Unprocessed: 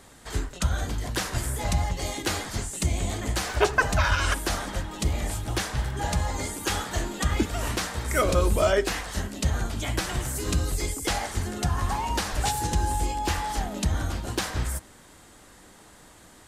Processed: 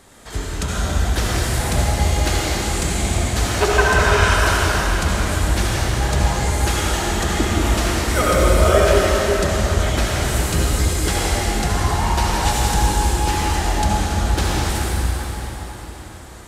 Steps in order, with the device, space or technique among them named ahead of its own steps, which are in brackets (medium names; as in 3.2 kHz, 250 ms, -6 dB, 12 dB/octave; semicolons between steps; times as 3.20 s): cathedral (reverberation RT60 4.8 s, pre-delay 60 ms, DRR -6 dB); trim +2 dB